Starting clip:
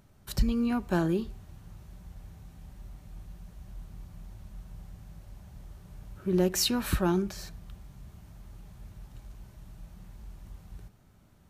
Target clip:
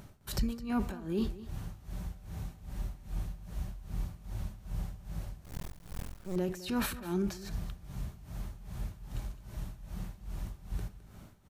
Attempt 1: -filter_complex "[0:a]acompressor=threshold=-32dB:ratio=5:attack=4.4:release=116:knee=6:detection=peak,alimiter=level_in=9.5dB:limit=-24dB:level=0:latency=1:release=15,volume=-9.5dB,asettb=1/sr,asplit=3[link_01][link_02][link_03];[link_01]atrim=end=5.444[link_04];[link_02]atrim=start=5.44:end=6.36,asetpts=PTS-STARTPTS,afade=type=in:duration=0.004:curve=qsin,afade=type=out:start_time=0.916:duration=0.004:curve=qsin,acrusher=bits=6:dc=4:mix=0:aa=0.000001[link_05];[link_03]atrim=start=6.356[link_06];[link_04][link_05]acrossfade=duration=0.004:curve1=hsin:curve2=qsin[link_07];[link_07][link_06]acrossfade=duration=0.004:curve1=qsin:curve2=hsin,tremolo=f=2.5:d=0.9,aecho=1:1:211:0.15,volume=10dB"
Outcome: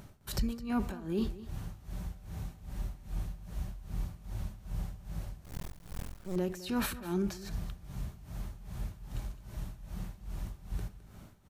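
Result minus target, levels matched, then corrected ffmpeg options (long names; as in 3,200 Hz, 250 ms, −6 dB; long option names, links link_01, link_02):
downward compressor: peak gain reduction +13 dB
-filter_complex "[0:a]alimiter=level_in=9.5dB:limit=-24dB:level=0:latency=1:release=15,volume=-9.5dB,asettb=1/sr,asplit=3[link_01][link_02][link_03];[link_01]atrim=end=5.444[link_04];[link_02]atrim=start=5.44:end=6.36,asetpts=PTS-STARTPTS,afade=type=in:duration=0.004:curve=qsin,afade=type=out:start_time=0.916:duration=0.004:curve=qsin,acrusher=bits=6:dc=4:mix=0:aa=0.000001[link_05];[link_03]atrim=start=6.356[link_06];[link_04][link_05]acrossfade=duration=0.004:curve1=hsin:curve2=qsin[link_07];[link_07][link_06]acrossfade=duration=0.004:curve1=qsin:curve2=hsin,tremolo=f=2.5:d=0.9,aecho=1:1:211:0.15,volume=10dB"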